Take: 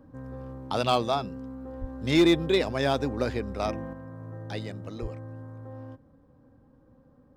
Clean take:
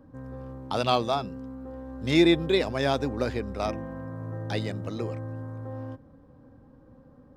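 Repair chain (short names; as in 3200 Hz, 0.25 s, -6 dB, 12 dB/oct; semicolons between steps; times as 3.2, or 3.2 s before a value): clip repair -13.5 dBFS; 1.8–1.92 HPF 140 Hz 24 dB/oct; 3.93 gain correction +5 dB; 5.01–5.13 HPF 140 Hz 24 dB/oct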